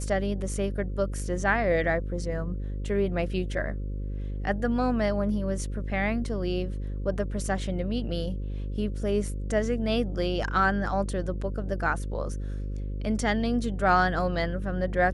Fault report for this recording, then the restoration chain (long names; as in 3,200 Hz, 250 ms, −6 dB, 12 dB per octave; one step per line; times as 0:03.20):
mains buzz 50 Hz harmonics 11 −32 dBFS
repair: hum removal 50 Hz, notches 11